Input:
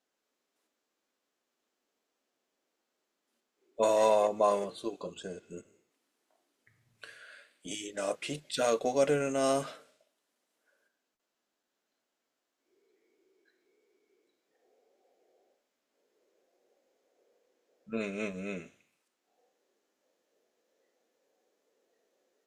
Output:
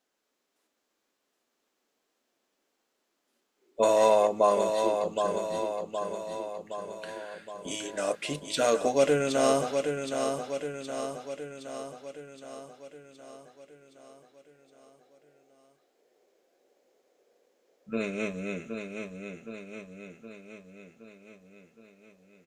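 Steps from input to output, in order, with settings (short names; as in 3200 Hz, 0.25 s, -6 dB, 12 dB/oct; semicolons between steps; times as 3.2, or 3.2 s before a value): feedback echo 0.768 s, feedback 58%, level -6 dB; gain +3.5 dB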